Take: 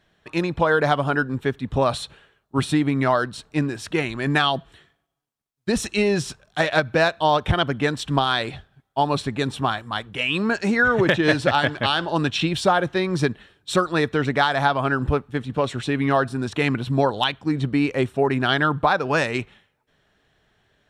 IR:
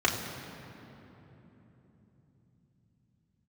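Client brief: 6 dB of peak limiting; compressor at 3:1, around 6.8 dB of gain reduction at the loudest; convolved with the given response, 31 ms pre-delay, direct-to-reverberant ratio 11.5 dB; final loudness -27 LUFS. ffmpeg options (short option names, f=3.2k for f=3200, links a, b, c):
-filter_complex "[0:a]acompressor=threshold=-23dB:ratio=3,alimiter=limit=-16.5dB:level=0:latency=1,asplit=2[a][b];[1:a]atrim=start_sample=2205,adelay=31[c];[b][c]afir=irnorm=-1:irlink=0,volume=-24.5dB[d];[a][d]amix=inputs=2:normalize=0,volume=1dB"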